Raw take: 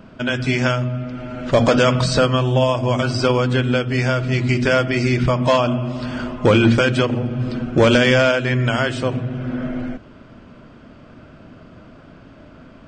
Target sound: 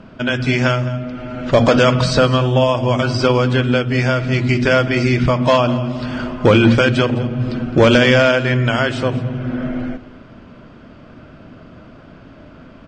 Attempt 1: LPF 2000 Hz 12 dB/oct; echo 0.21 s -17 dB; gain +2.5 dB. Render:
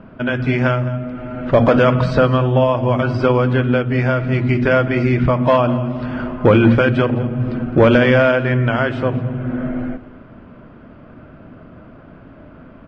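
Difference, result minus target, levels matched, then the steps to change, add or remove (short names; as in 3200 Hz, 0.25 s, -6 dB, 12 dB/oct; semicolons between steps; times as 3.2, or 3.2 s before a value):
8000 Hz band -18.0 dB
change: LPF 6700 Hz 12 dB/oct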